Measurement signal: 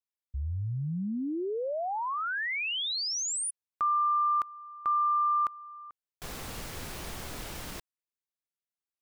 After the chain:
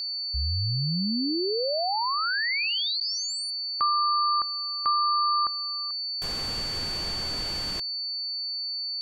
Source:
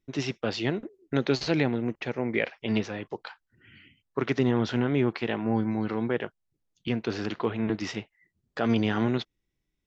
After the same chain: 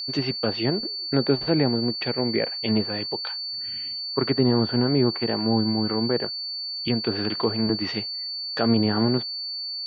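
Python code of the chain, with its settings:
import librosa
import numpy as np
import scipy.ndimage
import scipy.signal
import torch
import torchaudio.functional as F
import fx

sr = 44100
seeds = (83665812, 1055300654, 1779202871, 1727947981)

y = fx.env_lowpass_down(x, sr, base_hz=1300.0, full_db=-24.0)
y = y + 10.0 ** (-33.0 / 20.0) * np.sin(2.0 * np.pi * 4500.0 * np.arange(len(y)) / sr)
y = y * librosa.db_to_amplitude(4.0)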